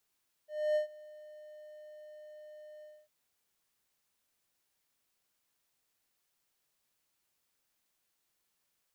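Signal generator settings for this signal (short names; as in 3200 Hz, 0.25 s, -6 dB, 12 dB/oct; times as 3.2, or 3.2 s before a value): ADSR triangle 607 Hz, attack 0.277 s, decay 0.114 s, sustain -23 dB, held 2.35 s, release 0.251 s -23.5 dBFS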